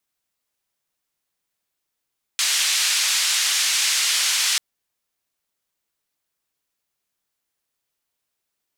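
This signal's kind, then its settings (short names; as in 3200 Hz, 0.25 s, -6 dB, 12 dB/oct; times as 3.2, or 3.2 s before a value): noise band 2000–7000 Hz, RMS -20.5 dBFS 2.19 s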